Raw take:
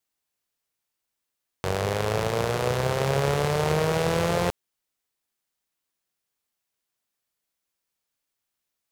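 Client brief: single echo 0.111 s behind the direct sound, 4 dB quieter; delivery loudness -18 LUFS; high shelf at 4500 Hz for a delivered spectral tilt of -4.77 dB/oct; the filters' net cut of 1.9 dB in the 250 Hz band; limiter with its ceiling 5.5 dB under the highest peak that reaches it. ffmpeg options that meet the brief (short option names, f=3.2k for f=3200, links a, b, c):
-af "equalizer=f=250:t=o:g=-4,highshelf=f=4.5k:g=-5,alimiter=limit=-15.5dB:level=0:latency=1,aecho=1:1:111:0.631,volume=9.5dB"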